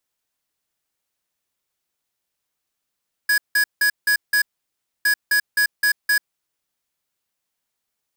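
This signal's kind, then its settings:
beeps in groups square 1,670 Hz, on 0.09 s, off 0.17 s, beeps 5, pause 0.63 s, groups 2, −17 dBFS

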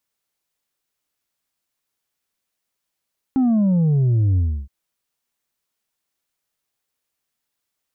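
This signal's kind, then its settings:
bass drop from 270 Hz, over 1.32 s, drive 3.5 dB, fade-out 0.31 s, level −14.5 dB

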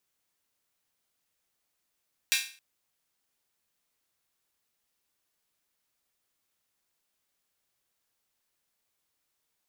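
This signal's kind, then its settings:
open synth hi-hat length 0.27 s, high-pass 2,300 Hz, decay 0.40 s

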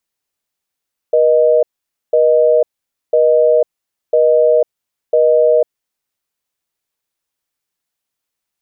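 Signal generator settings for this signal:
call progress tone busy tone, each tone −10.5 dBFS 4.70 s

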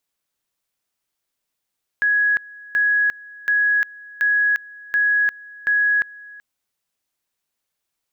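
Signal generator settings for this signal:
tone at two levels in turn 1,670 Hz −14.5 dBFS, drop 22.5 dB, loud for 0.35 s, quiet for 0.38 s, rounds 6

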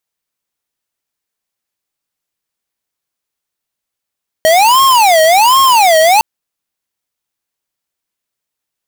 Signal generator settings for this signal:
siren wail 631–1,080 Hz 1.3 per second square −7.5 dBFS 1.76 s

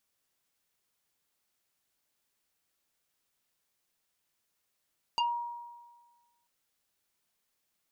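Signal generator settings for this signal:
two-operator FM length 1.29 s, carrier 950 Hz, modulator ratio 1.97, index 2.1, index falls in 0.18 s exponential, decay 1.43 s, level −24 dB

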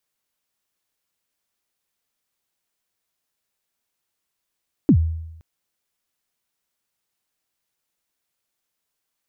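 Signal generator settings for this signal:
synth kick length 0.52 s, from 340 Hz, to 81 Hz, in 77 ms, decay 0.89 s, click off, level −8 dB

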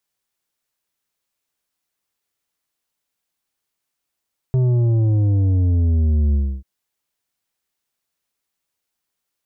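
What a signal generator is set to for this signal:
bass drop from 130 Hz, over 2.09 s, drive 8 dB, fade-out 0.29 s, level −14.5 dB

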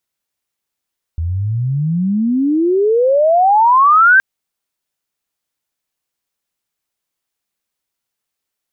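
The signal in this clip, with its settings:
glide logarithmic 79 Hz → 1,600 Hz −16 dBFS → −5 dBFS 3.02 s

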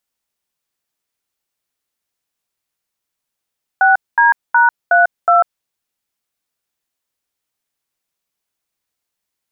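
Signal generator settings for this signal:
touch tones "6D#32", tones 146 ms, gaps 221 ms, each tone −10 dBFS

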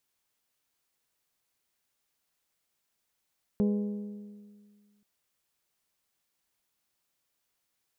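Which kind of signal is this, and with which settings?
struck metal bell, length 1.43 s, lowest mode 206 Hz, modes 6, decay 1.87 s, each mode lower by 7.5 dB, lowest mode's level −22 dB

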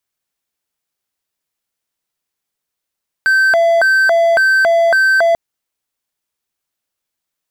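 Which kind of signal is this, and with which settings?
siren hi-lo 672–1,550 Hz 1.8 per second triangle −6.5 dBFS 2.09 s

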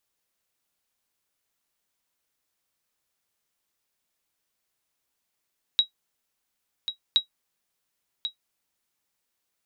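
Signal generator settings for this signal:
ping with an echo 3,840 Hz, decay 0.11 s, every 1.37 s, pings 2, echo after 1.09 s, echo −10 dB −10.5 dBFS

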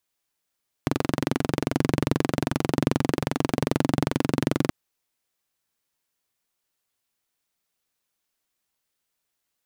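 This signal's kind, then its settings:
pulse-train model of a single-cylinder engine, steady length 3.83 s, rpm 2,700, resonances 150/260 Hz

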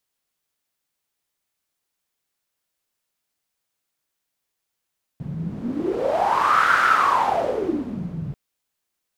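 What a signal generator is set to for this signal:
wind from filtered noise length 3.14 s, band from 150 Hz, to 1,400 Hz, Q 7.7, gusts 1, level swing 12 dB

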